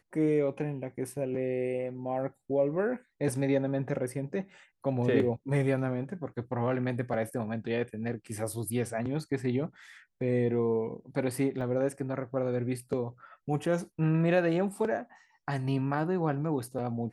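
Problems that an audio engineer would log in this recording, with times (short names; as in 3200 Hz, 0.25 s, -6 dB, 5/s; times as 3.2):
11.61 gap 2.6 ms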